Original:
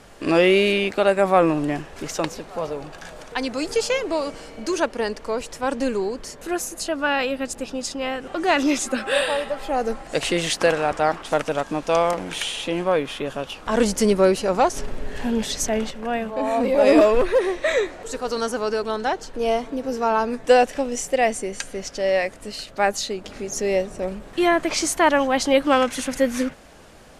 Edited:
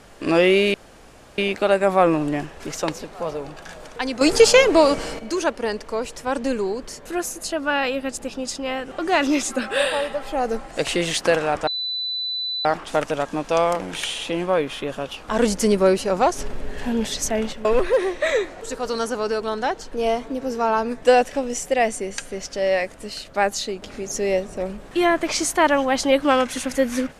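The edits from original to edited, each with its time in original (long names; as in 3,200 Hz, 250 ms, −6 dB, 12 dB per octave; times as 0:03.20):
0:00.74: splice in room tone 0.64 s
0:03.57–0:04.55: clip gain +9.5 dB
0:11.03: insert tone 3,990 Hz −23.5 dBFS 0.98 s
0:16.03–0:17.07: remove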